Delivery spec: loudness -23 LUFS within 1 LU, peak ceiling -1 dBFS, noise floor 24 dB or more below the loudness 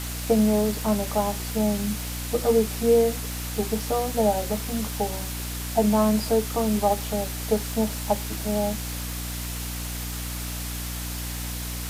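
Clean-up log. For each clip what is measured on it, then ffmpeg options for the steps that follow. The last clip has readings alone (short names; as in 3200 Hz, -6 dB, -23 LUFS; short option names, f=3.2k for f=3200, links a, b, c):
hum 60 Hz; harmonics up to 300 Hz; hum level -31 dBFS; noise floor -32 dBFS; noise floor target -50 dBFS; loudness -25.5 LUFS; peak -8.5 dBFS; loudness target -23.0 LUFS
-> -af "bandreject=f=60:t=h:w=4,bandreject=f=120:t=h:w=4,bandreject=f=180:t=h:w=4,bandreject=f=240:t=h:w=4,bandreject=f=300:t=h:w=4"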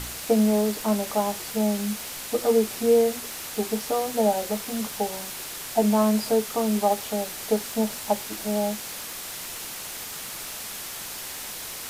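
hum none; noise floor -36 dBFS; noise floor target -50 dBFS
-> -af "afftdn=nr=14:nf=-36"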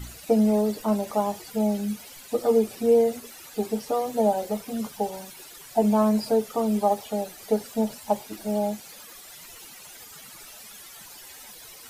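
noise floor -46 dBFS; noise floor target -50 dBFS
-> -af "afftdn=nr=6:nf=-46"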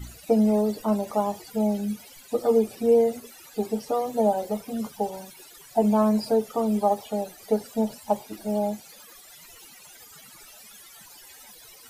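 noise floor -49 dBFS; noise floor target -50 dBFS
-> -af "afftdn=nr=6:nf=-49"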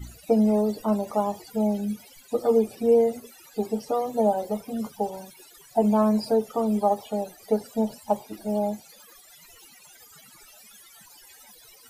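noise floor -52 dBFS; loudness -25.5 LUFS; peak -10.5 dBFS; loudness target -23.0 LUFS
-> -af "volume=2.5dB"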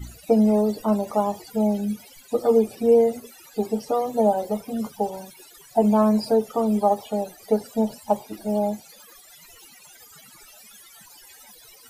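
loudness -23.0 LUFS; peak -8.0 dBFS; noise floor -50 dBFS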